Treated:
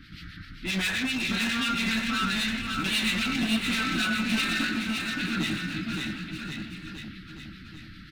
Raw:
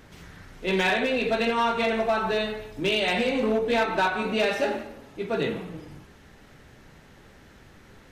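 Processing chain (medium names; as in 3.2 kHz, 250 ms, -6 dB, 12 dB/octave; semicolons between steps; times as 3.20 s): Chebyshev band-stop 320–1300 Hz, order 4; resonant high shelf 5.5 kHz -7 dB, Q 3; in parallel at +1 dB: peak limiter -21.5 dBFS, peak gain reduction 8.5 dB; on the sum: hard clipper -22.5 dBFS, distortion -10 dB; harmonic tremolo 7.6 Hz, depth 70%, crossover 1.6 kHz; bouncing-ball echo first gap 570 ms, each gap 0.9×, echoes 5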